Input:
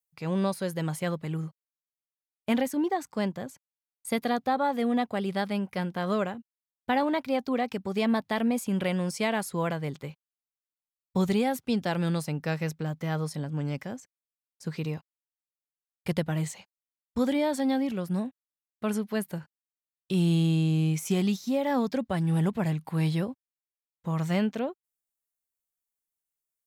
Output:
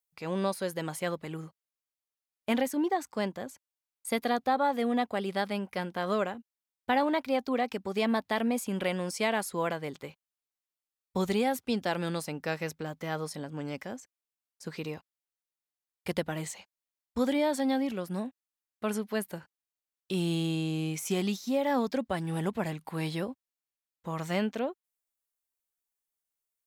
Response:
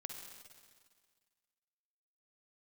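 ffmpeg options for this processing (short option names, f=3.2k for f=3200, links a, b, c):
-af "equalizer=f=140:w=1.5:g=-11"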